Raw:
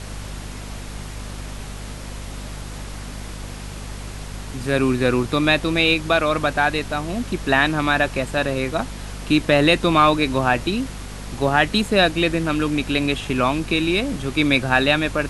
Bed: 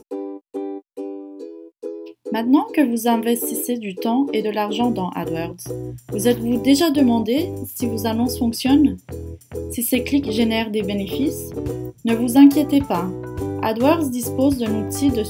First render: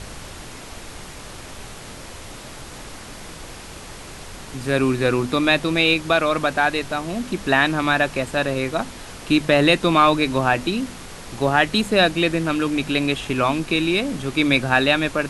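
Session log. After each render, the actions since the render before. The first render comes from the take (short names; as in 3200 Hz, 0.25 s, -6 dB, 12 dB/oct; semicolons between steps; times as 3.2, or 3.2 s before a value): de-hum 50 Hz, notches 5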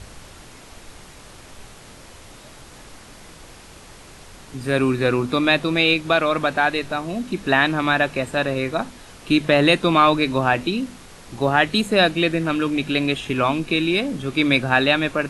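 noise print and reduce 6 dB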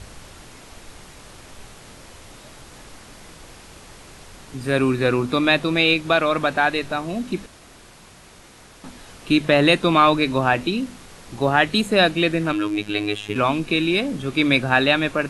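7.46–8.84 room tone; 12.52–13.36 robotiser 104 Hz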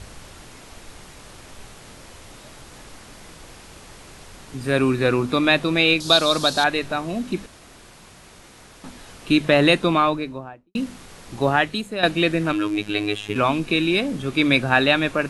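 6–6.64 resonant high shelf 3200 Hz +12 dB, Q 3; 9.64–10.75 studio fade out; 11.51–12.03 fade out quadratic, to -11 dB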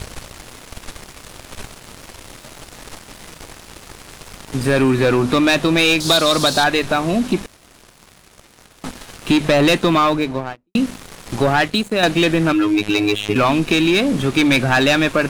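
sample leveller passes 3; compressor 2:1, threshold -16 dBFS, peak gain reduction 6 dB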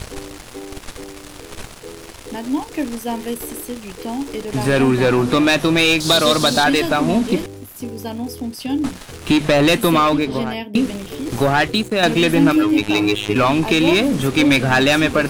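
add bed -6.5 dB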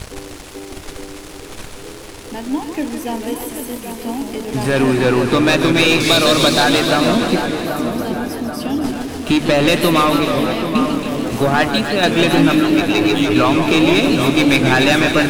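split-band echo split 1700 Hz, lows 0.782 s, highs 0.275 s, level -7.5 dB; warbling echo 0.153 s, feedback 71%, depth 172 cents, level -9 dB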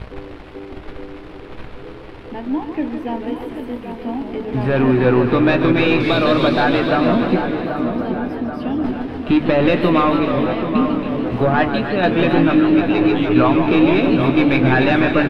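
air absorption 420 m; doubler 16 ms -10.5 dB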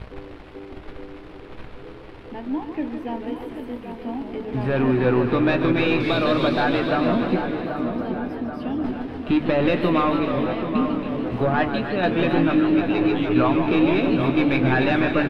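gain -5 dB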